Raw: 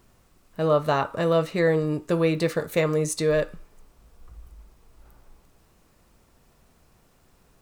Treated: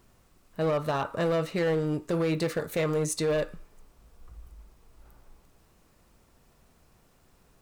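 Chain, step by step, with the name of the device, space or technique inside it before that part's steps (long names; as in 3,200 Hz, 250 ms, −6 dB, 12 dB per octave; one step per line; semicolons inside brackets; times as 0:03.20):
limiter into clipper (brickwall limiter −15.5 dBFS, peak gain reduction 6 dB; hard clipping −20 dBFS, distortion −16 dB)
level −2 dB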